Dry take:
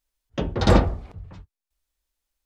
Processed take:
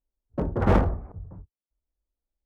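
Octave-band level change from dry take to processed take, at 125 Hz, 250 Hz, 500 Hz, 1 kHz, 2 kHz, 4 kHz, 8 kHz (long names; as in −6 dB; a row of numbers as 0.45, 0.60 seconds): −2.5 dB, −3.0 dB, −3.0 dB, −2.5 dB, −4.5 dB, −16.0 dB, below −15 dB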